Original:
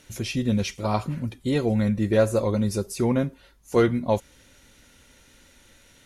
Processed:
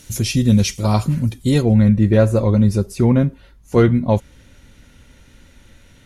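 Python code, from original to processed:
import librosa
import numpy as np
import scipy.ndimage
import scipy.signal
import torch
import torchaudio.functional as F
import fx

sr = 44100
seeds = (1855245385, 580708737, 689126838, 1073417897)

y = fx.bass_treble(x, sr, bass_db=9, treble_db=fx.steps((0.0, 10.0), (1.61, -5.0)))
y = F.gain(torch.from_numpy(y), 3.5).numpy()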